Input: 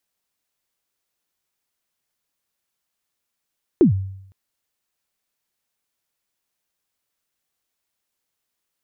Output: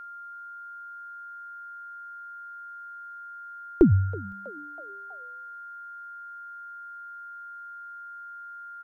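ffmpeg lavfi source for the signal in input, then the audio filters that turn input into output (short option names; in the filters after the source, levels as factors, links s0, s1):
-f lavfi -i "aevalsrc='0.447*pow(10,-3*t/0.74)*sin(2*PI*(400*0.114/log(96/400)*(exp(log(96/400)*min(t,0.114)/0.114)-1)+96*max(t-0.114,0)))':d=0.51:s=44100"
-filter_complex "[0:a]asubboost=boost=10.5:cutoff=50,aeval=exprs='val(0)+0.0112*sin(2*PI*1400*n/s)':c=same,asplit=5[s0][s1][s2][s3][s4];[s1]adelay=323,afreqshift=100,volume=0.0841[s5];[s2]adelay=646,afreqshift=200,volume=0.0462[s6];[s3]adelay=969,afreqshift=300,volume=0.0254[s7];[s4]adelay=1292,afreqshift=400,volume=0.014[s8];[s0][s5][s6][s7][s8]amix=inputs=5:normalize=0"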